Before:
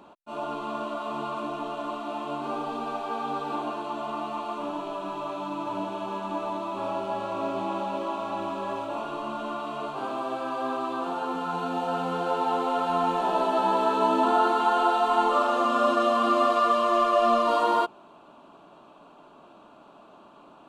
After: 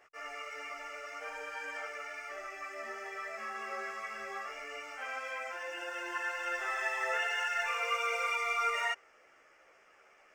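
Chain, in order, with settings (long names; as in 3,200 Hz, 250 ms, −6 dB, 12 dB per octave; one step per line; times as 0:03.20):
wrong playback speed 7.5 ips tape played at 15 ips
multi-voice chorus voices 4, 0.71 Hz, delay 14 ms, depth 1.3 ms
level −8 dB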